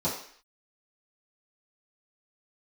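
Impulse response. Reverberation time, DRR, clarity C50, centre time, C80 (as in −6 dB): 0.55 s, −11.0 dB, 5.5 dB, 34 ms, 9.0 dB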